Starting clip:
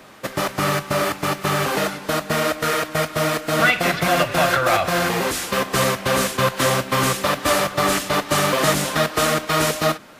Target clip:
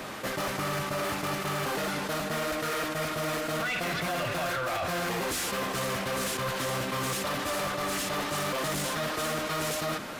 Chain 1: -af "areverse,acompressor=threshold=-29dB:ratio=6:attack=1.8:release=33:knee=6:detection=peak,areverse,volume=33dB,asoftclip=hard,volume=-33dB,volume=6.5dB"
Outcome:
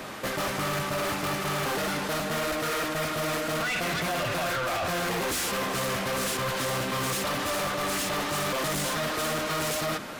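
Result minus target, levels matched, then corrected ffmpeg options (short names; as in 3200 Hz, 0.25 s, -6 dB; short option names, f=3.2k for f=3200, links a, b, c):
compressor: peak gain reduction -5 dB
-af "areverse,acompressor=threshold=-35dB:ratio=6:attack=1.8:release=33:knee=6:detection=peak,areverse,volume=33dB,asoftclip=hard,volume=-33dB,volume=6.5dB"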